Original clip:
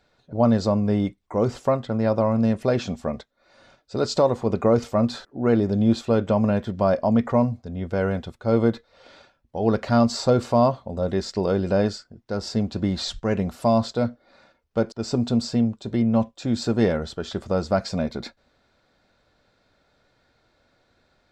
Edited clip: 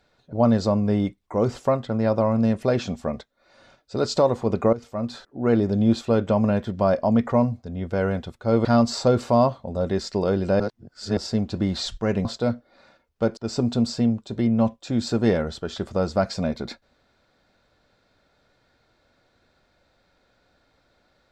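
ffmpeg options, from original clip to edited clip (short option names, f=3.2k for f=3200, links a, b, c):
-filter_complex "[0:a]asplit=6[a][b][c][d][e][f];[a]atrim=end=4.73,asetpts=PTS-STARTPTS,afade=t=out:st=4.726:d=0.004:c=hsin:silence=0.149624[g];[b]atrim=start=4.73:end=8.652,asetpts=PTS-STARTPTS,afade=t=in:d=0.82:silence=0.149624[h];[c]atrim=start=9.868:end=11.822[i];[d]atrim=start=11.818:end=12.392,asetpts=PTS-STARTPTS,areverse[j];[e]atrim=start=12.388:end=13.472[k];[f]atrim=start=13.798[l];[g][h]concat=n=2:v=0:a=1[m];[m][i]acrossfade=d=0.004:c1=hsin:c2=hsin[n];[n][j]acrossfade=d=0.004:c1=hsin:c2=hsin[o];[o][k]acrossfade=d=0.004:c1=hsin:c2=hsin[p];[p][l]acrossfade=d=0.004:c1=hsin:c2=hsin"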